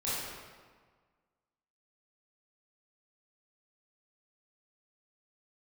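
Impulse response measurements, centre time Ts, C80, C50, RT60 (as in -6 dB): 0.118 s, 0.0 dB, -3.0 dB, 1.6 s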